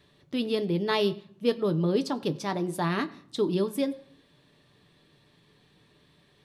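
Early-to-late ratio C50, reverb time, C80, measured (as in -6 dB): 18.5 dB, 0.55 s, 20.5 dB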